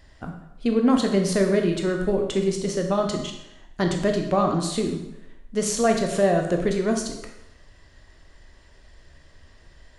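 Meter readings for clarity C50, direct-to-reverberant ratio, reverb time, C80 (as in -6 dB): 6.0 dB, 3.0 dB, 0.85 s, 8.0 dB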